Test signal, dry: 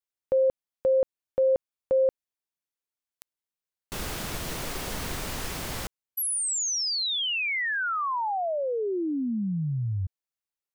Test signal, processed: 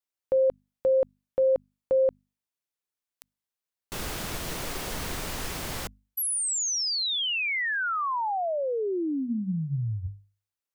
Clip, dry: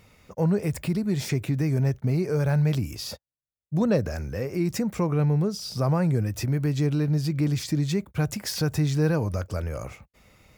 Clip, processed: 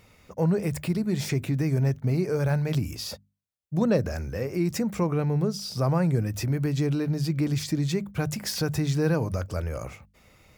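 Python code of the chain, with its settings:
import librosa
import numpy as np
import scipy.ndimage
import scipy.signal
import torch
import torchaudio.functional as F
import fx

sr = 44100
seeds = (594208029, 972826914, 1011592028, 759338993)

y = fx.hum_notches(x, sr, base_hz=50, count=5)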